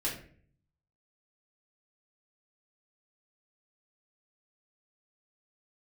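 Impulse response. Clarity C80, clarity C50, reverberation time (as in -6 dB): 10.5 dB, 6.5 dB, 0.50 s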